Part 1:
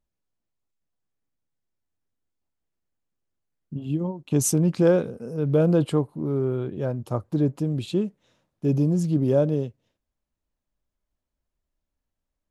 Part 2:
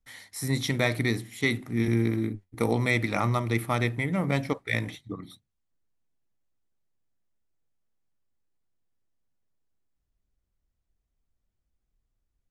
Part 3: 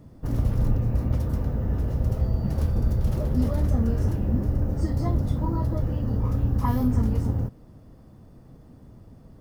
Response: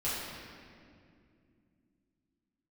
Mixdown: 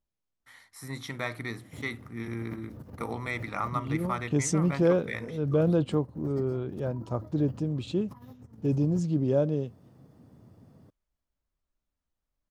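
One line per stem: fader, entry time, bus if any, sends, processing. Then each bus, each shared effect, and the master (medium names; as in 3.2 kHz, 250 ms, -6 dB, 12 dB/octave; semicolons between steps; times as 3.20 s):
-4.5 dB, 0.00 s, no send, low-pass 7.8 kHz 24 dB/octave
-11.5 dB, 0.40 s, no send, peaking EQ 1.2 kHz +11.5 dB 1.1 oct
-12.5 dB, 1.50 s, no send, compressor with a negative ratio -29 dBFS, ratio -0.5; high-pass 90 Hz 24 dB/octave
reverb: none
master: none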